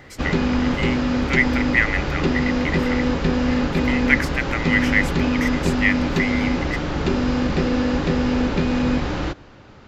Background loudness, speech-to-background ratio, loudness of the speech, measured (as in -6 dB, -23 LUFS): -21.5 LUFS, -2.5 dB, -24.0 LUFS